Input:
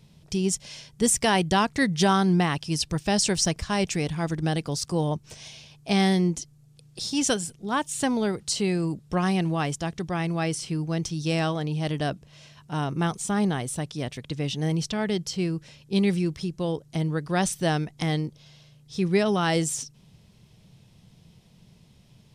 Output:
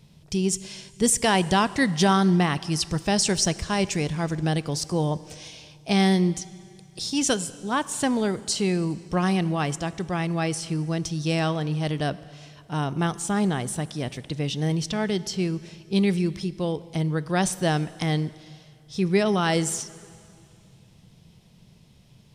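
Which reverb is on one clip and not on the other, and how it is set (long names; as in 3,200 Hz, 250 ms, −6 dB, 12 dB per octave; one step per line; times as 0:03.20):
dense smooth reverb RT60 2.4 s, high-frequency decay 0.95×, DRR 16.5 dB
level +1 dB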